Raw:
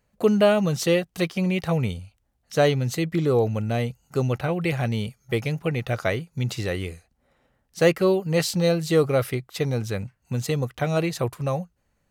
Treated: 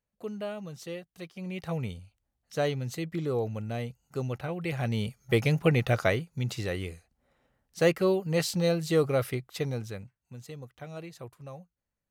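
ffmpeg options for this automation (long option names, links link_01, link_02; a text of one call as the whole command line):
ffmpeg -i in.wav -af "volume=2.5dB,afade=type=in:start_time=1.33:duration=0.41:silence=0.354813,afade=type=in:start_time=4.63:duration=1.04:silence=0.266073,afade=type=out:start_time=5.67:duration=0.71:silence=0.421697,afade=type=out:start_time=9.52:duration=0.67:silence=0.223872" out.wav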